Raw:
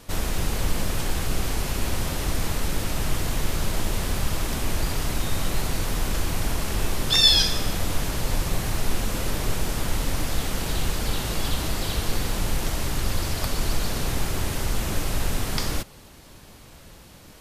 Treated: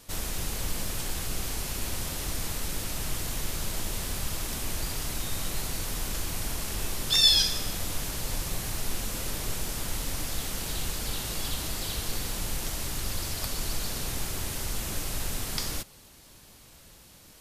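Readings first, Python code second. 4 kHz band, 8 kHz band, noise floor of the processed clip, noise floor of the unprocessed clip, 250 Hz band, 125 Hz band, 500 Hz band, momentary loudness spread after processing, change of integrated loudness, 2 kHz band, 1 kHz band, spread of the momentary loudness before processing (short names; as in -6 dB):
-3.0 dB, -1.0 dB, -53 dBFS, -47 dBFS, -8.5 dB, -8.5 dB, -8.5 dB, 1 LU, -4.0 dB, -6.0 dB, -7.5 dB, 1 LU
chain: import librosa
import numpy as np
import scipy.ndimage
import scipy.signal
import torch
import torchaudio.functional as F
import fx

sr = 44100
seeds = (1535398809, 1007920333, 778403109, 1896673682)

y = fx.high_shelf(x, sr, hz=3300.0, db=9.0)
y = y * librosa.db_to_amplitude(-8.5)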